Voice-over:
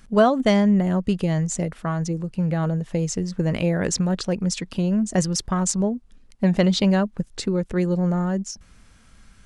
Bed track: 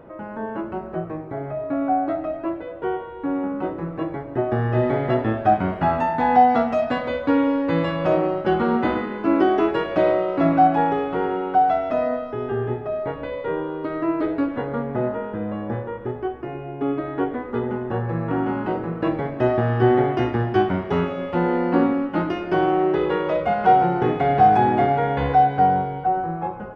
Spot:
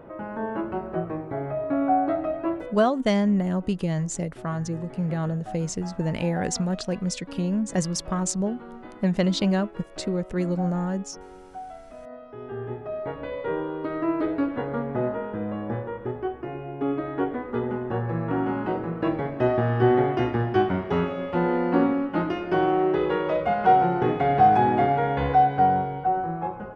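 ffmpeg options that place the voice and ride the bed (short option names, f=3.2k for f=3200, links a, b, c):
-filter_complex "[0:a]adelay=2600,volume=-4dB[a];[1:a]volume=18.5dB,afade=t=out:st=2.58:d=0.3:silence=0.0891251,afade=t=in:st=12.01:d=1.43:silence=0.112202[b];[a][b]amix=inputs=2:normalize=0"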